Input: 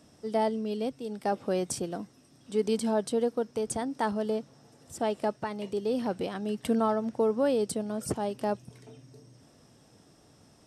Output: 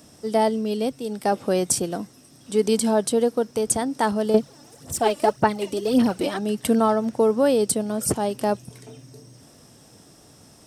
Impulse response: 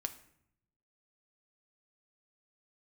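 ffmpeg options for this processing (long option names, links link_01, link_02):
-filter_complex "[0:a]highshelf=frequency=7600:gain=11.5,asettb=1/sr,asplit=3[link_01][link_02][link_03];[link_01]atrim=end=4.344[link_04];[link_02]atrim=start=4.34:end=6.39,asetpts=PTS-STARTPTS,afade=type=in:duration=0.004:curve=qsin,afade=type=out:start_time=2.046:duration=0.004:curve=qsin,aphaser=in_gain=1:out_gain=1:delay=3.5:decay=0.65:speed=1.8:type=sinusoidal[link_05];[link_03]atrim=start=6.386[link_06];[link_04][link_05]acrossfade=duration=0.004:curve1=hsin:curve2=qsin[link_07];[link_07][link_06]acrossfade=duration=0.004:curve1=qsin:curve2=hsin,volume=7dB"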